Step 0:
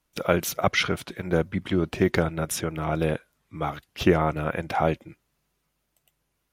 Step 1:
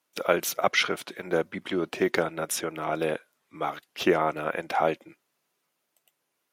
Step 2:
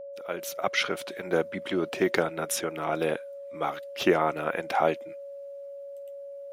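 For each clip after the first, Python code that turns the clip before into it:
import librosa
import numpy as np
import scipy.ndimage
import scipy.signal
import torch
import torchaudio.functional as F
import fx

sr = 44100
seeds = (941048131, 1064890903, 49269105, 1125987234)

y1 = scipy.signal.sosfilt(scipy.signal.butter(2, 320.0, 'highpass', fs=sr, output='sos'), x)
y2 = fx.fade_in_head(y1, sr, length_s=1.1)
y2 = y2 + 10.0 ** (-38.0 / 20.0) * np.sin(2.0 * np.pi * 560.0 * np.arange(len(y2)) / sr)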